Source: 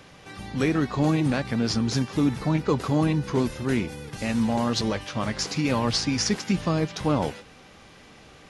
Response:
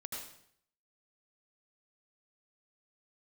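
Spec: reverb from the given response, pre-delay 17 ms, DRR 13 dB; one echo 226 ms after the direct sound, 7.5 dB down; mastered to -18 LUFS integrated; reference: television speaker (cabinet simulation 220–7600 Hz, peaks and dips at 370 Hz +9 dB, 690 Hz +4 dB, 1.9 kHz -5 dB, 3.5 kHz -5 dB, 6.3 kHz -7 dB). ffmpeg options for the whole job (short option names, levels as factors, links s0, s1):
-filter_complex "[0:a]aecho=1:1:226:0.422,asplit=2[s0][s1];[1:a]atrim=start_sample=2205,adelay=17[s2];[s1][s2]afir=irnorm=-1:irlink=0,volume=0.251[s3];[s0][s3]amix=inputs=2:normalize=0,highpass=f=220:w=0.5412,highpass=f=220:w=1.3066,equalizer=f=370:t=q:w=4:g=9,equalizer=f=690:t=q:w=4:g=4,equalizer=f=1900:t=q:w=4:g=-5,equalizer=f=3500:t=q:w=4:g=-5,equalizer=f=6300:t=q:w=4:g=-7,lowpass=f=7600:w=0.5412,lowpass=f=7600:w=1.3066,volume=2"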